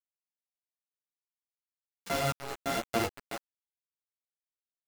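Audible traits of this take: a buzz of ramps at a fixed pitch in blocks of 64 samples; tremolo saw up 1.3 Hz, depth 95%; a quantiser's noise floor 6-bit, dither none; a shimmering, thickened sound

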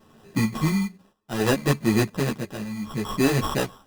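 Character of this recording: a buzz of ramps at a fixed pitch in blocks of 8 samples; tremolo triangle 0.66 Hz, depth 85%; aliases and images of a low sample rate 2200 Hz, jitter 0%; a shimmering, thickened sound

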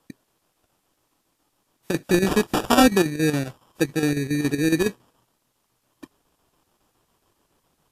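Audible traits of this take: aliases and images of a low sample rate 2100 Hz, jitter 0%; chopped level 7.2 Hz, depth 60%, duty 75%; a quantiser's noise floor 12-bit, dither triangular; WMA

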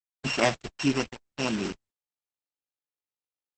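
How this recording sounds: a buzz of ramps at a fixed pitch in blocks of 16 samples; tremolo triangle 0.61 Hz, depth 90%; a quantiser's noise floor 6-bit, dither none; Opus

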